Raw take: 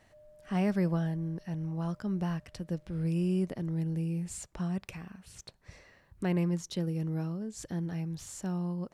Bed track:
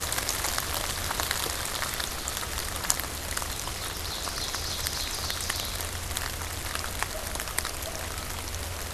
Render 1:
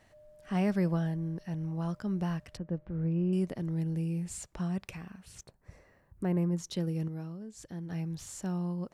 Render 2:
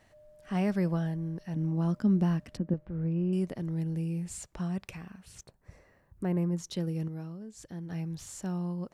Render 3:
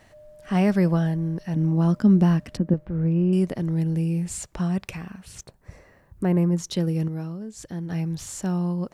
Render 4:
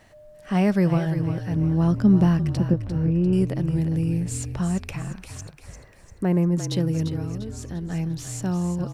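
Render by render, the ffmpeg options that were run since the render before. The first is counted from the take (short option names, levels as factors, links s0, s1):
-filter_complex "[0:a]asettb=1/sr,asplit=3[s0][s1][s2];[s0]atrim=end=2.574[s3];[s1]atrim=start=2.57:end=3.33,asetpts=PTS-STARTPTS,afade=t=in:d=0.004:c=qsin,afade=t=out:st=0.756:d=0.004:c=qsin,lowpass=1500[s4];[s2]atrim=start=3.326[s5];[s3][s4]acrossfade=d=0.004:c1=hsin:c2=qsin[s6];[s6][s5]acrossfade=d=0.004:c1=qsin:c2=hsin,asettb=1/sr,asplit=3[s7][s8][s9];[s7]atrim=end=5.434[s10];[s8]atrim=start=5.43:end=6.58,asetpts=PTS-STARTPTS,afade=t=in:d=0.004:c=qsin,afade=t=out:st=1.146:d=0.004:c=qsin,equalizer=f=3800:t=o:w=2:g=-13.5[s11];[s9]atrim=start=6.576[s12];[s10][s11]acrossfade=d=0.004:c1=hsin:c2=qsin[s13];[s13][s12]acrossfade=d=0.004:c1=qsin:c2=hsin,asplit=3[s14][s15][s16];[s14]atrim=end=7.082[s17];[s15]atrim=start=7.078:end=7.902,asetpts=PTS-STARTPTS,volume=0.501[s18];[s16]atrim=start=7.898[s19];[s17][s18]acrossfade=d=0.004:c1=hsin:c2=hsin[s20];[s20][s19]acrossfade=d=0.004:c1=hsin:c2=hsin"
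-filter_complex "[0:a]asettb=1/sr,asplit=3[s0][s1][s2];[s0]atrim=end=1.564[s3];[s1]atrim=start=1.56:end=2.74,asetpts=PTS-STARTPTS,afade=t=in:d=0.004:c=qsin,afade=t=out:st=1.176:d=0.004:c=qsin,equalizer=f=250:w=1.5:g=13[s4];[s2]atrim=start=2.736[s5];[s3][s4]acrossfade=d=0.004:c1=hsin:c2=qsin[s6];[s6][s5]acrossfade=d=0.004:c1=qsin:c2=hsin"
-af "volume=2.66"
-filter_complex "[0:a]asplit=6[s0][s1][s2][s3][s4][s5];[s1]adelay=347,afreqshift=-42,volume=0.355[s6];[s2]adelay=694,afreqshift=-84,volume=0.157[s7];[s3]adelay=1041,afreqshift=-126,volume=0.0684[s8];[s4]adelay=1388,afreqshift=-168,volume=0.0302[s9];[s5]adelay=1735,afreqshift=-210,volume=0.0133[s10];[s0][s6][s7][s8][s9][s10]amix=inputs=6:normalize=0"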